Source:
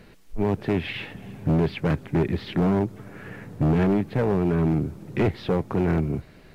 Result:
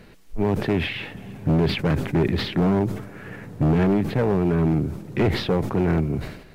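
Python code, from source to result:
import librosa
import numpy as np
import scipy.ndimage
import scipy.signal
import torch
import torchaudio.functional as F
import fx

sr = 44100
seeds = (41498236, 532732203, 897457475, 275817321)

y = fx.sustainer(x, sr, db_per_s=76.0)
y = F.gain(torch.from_numpy(y), 1.5).numpy()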